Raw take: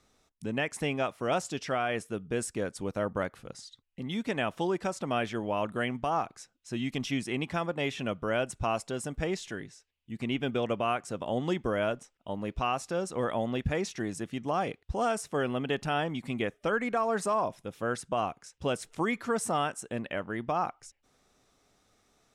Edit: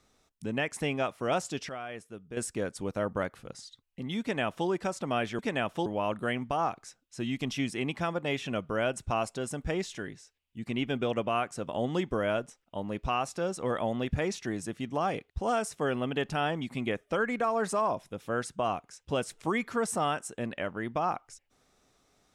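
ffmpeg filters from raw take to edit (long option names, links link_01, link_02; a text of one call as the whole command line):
ffmpeg -i in.wav -filter_complex "[0:a]asplit=5[link_01][link_02][link_03][link_04][link_05];[link_01]atrim=end=1.692[link_06];[link_02]atrim=start=1.688:end=2.372,asetpts=PTS-STARTPTS,volume=-9.5dB[link_07];[link_03]atrim=start=2.368:end=5.392[link_08];[link_04]atrim=start=4.208:end=4.682[link_09];[link_05]atrim=start=5.388[link_10];[link_06][link_07]acrossfade=duration=0.004:curve1=hsin:curve2=hsin[link_11];[link_11][link_08]acrossfade=duration=0.004:curve1=hsin:curve2=hsin[link_12];[link_12][link_09]acrossfade=duration=0.004:curve1=hsin:curve2=hsin[link_13];[link_13][link_10]acrossfade=duration=0.004:curve1=hsin:curve2=hsin" out.wav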